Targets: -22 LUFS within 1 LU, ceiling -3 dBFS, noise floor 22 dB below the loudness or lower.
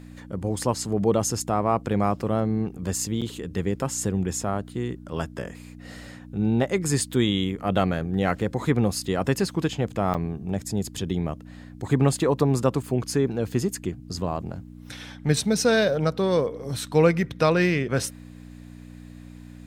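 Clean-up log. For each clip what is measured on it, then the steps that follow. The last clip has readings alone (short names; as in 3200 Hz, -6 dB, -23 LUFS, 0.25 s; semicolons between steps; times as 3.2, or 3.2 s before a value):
dropouts 2; longest dropout 6.8 ms; hum 60 Hz; harmonics up to 300 Hz; hum level -42 dBFS; loudness -25.0 LUFS; peak -6.5 dBFS; loudness target -22.0 LUFS
-> interpolate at 3.21/10.14, 6.8 ms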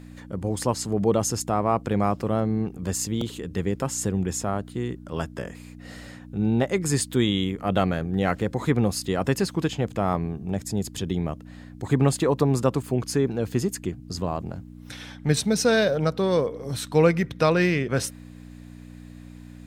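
dropouts 0; hum 60 Hz; harmonics up to 300 Hz; hum level -42 dBFS
-> de-hum 60 Hz, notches 5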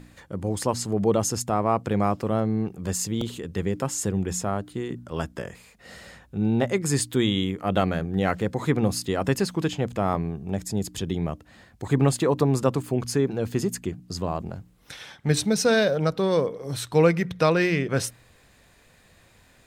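hum none; loudness -25.5 LUFS; peak -7.0 dBFS; loudness target -22.0 LUFS
-> gain +3.5 dB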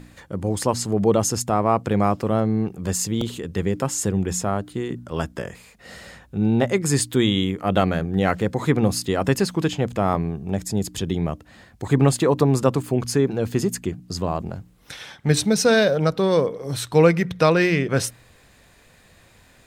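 loudness -22.0 LUFS; peak -3.5 dBFS; noise floor -54 dBFS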